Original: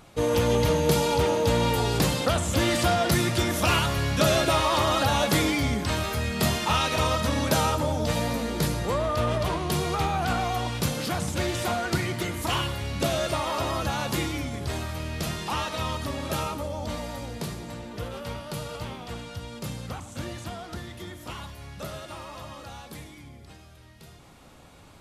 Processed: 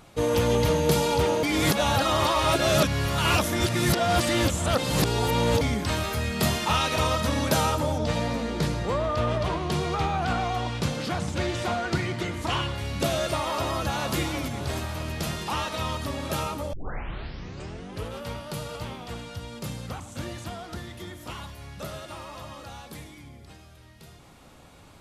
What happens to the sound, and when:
1.43–5.61 s: reverse
7.98–12.78 s: distance through air 60 m
13.62–14.16 s: echo throw 320 ms, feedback 70%, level -9 dB
16.73 s: tape start 1.40 s

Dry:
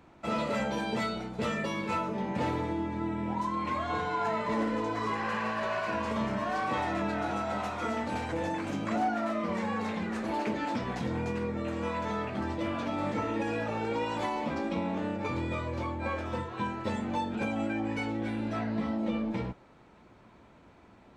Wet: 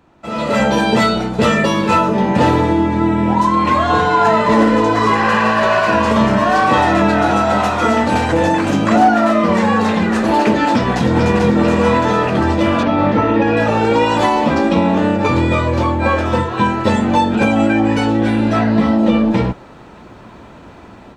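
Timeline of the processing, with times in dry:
10.72–11.55 s: echo throw 440 ms, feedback 55%, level -3.5 dB
12.83–13.57 s: distance through air 190 m
whole clip: band-stop 2.2 kHz, Q 13; level rider gain up to 15 dB; trim +3.5 dB

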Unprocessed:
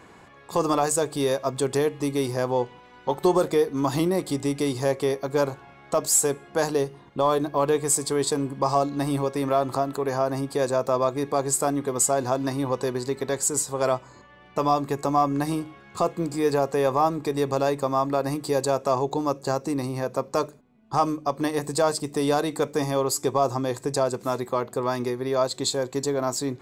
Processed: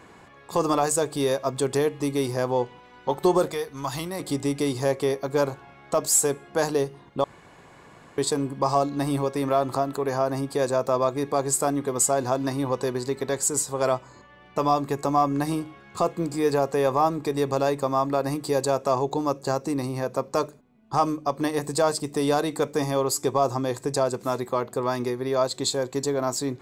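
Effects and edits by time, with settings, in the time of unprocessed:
3.52–4.20 s: peaking EQ 300 Hz -13 dB 1.9 oct
7.24–8.18 s: room tone

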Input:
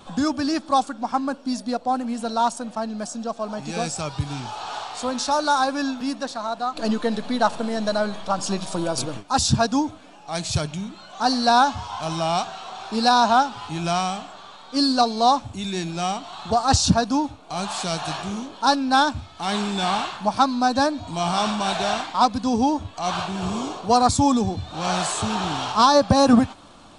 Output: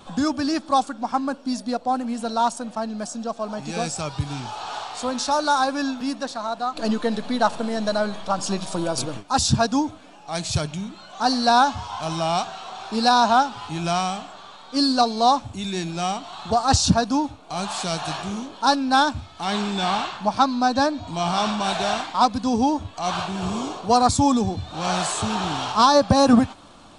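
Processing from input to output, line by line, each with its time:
19.44–21.64 s: low-pass 7.6 kHz

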